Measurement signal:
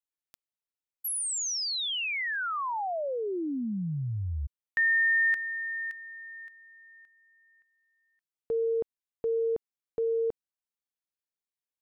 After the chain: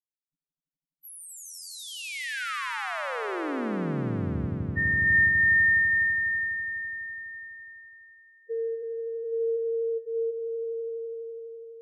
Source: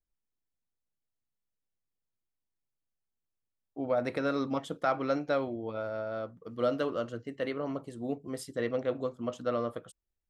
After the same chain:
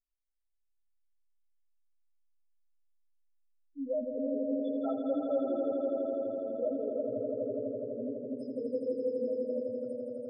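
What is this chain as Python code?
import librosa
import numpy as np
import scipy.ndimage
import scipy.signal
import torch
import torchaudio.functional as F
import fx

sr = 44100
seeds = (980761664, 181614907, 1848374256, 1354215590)

y = fx.rotary(x, sr, hz=0.75)
y = fx.spec_topn(y, sr, count=2)
y = fx.echo_swell(y, sr, ms=83, loudest=5, wet_db=-6.5)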